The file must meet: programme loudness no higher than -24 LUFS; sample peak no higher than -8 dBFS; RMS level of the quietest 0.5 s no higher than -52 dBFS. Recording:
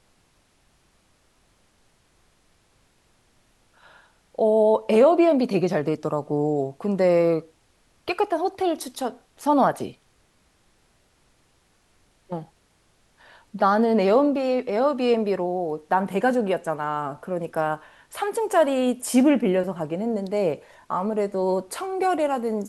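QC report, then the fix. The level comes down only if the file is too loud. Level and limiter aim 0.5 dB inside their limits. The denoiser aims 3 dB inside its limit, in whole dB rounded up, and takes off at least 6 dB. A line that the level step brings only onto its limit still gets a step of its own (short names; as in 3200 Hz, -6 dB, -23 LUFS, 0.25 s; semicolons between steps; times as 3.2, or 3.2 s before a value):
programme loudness -23.0 LUFS: fail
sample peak -6.5 dBFS: fail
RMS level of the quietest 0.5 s -63 dBFS: OK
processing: gain -1.5 dB; limiter -8.5 dBFS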